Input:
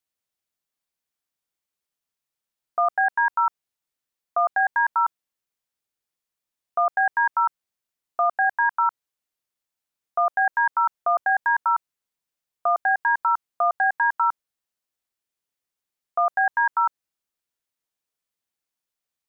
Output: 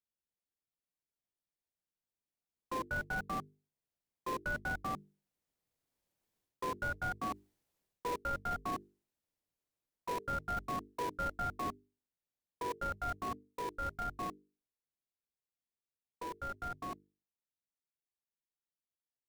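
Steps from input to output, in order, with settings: Doppler pass-by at 7.09 s, 8 m/s, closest 5.7 m; high-order bell 680 Hz -11 dB 1.1 oct; frequency shift -200 Hz; reverse; compression, threshold -37 dBFS, peak gain reduction 15.5 dB; reverse; peak limiter -35 dBFS, peak gain reduction 10.5 dB; band-stop 620 Hz, Q 19; in parallel at -3.5 dB: sample-rate reducer 1.4 kHz, jitter 20%; on the sum: hum notches 50/100/150/200/250/300/350/400/450 Hz; trim +3.5 dB

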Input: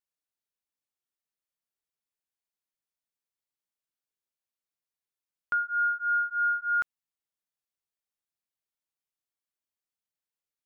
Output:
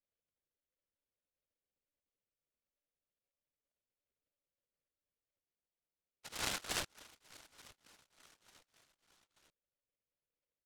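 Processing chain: gate -29 dBFS, range -8 dB; in parallel at -2.5 dB: peak limiter -30 dBFS, peak gain reduction 8.5 dB; on the sum: resonant low-pass 520 Hz, resonance Q 4.9; whisper effect; saturation -30.5 dBFS, distortion -23 dB; on a send: feedback delay 890 ms, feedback 48%, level -21.5 dB; on the sum: monotone LPC vocoder at 8 kHz 290 Hz; spectral freeze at 5.45 s, 0.80 s; delay time shaken by noise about 2.1 kHz, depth 0.21 ms; trim +2.5 dB

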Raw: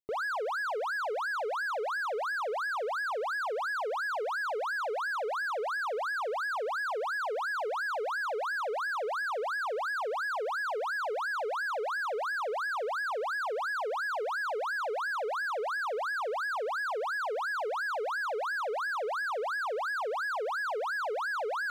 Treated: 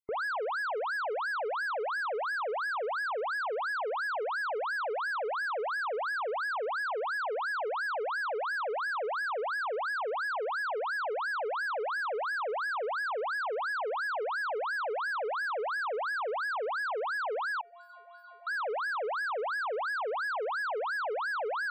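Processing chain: loudest bins only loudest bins 64; 17.61–18.47 s: inharmonic resonator 340 Hz, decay 0.76 s, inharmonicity 0.008

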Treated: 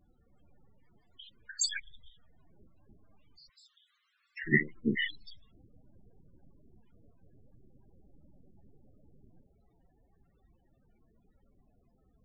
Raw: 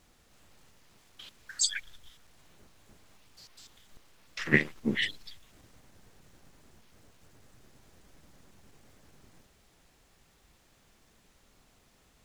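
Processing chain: 3.49–4.45 s: high-pass 1.1 kHz 24 dB/octave; loudest bins only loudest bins 16

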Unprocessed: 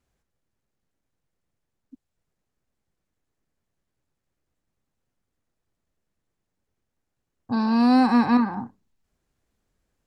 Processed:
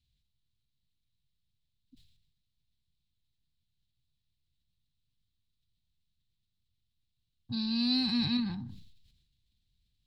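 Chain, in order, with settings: FFT filter 130 Hz 0 dB, 540 Hz -28 dB, 1.3 kHz -26 dB, 3.9 kHz +9 dB, 6.1 kHz -10 dB; decay stretcher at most 53 dB/s

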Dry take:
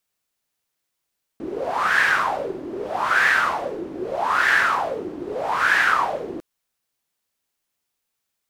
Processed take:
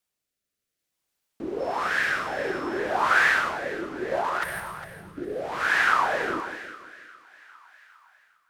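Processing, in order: 4.43–5.17 s: time-frequency box 210–8300 Hz -21 dB; 4.11–4.60 s: compressor with a negative ratio -25 dBFS, ratio -1; two-band feedback delay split 910 Hz, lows 171 ms, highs 405 ms, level -12 dB; rotary cabinet horn 0.6 Hz; 1.59–2.78 s: whistle 5.3 kHz -54 dBFS

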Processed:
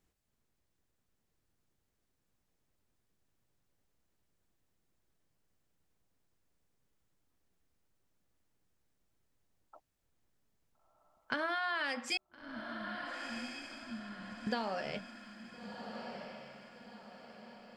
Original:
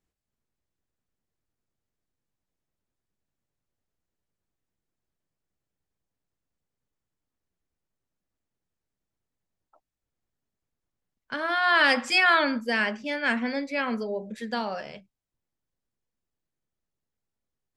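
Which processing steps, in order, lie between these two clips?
12.17–14.47 s: inverse Chebyshev low-pass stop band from 800 Hz, stop band 80 dB; compression 12:1, threshold -37 dBFS, peak gain reduction 21 dB; echo that smears into a reverb 1376 ms, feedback 45%, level -7 dB; trim +4.5 dB

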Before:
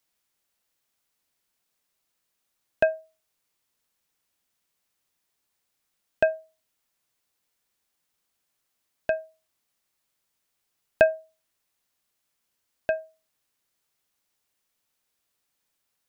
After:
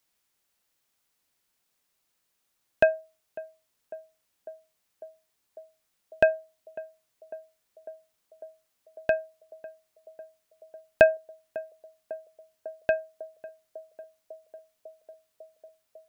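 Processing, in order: band-passed feedback delay 549 ms, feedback 82%, band-pass 520 Hz, level -18 dB; trim +1.5 dB

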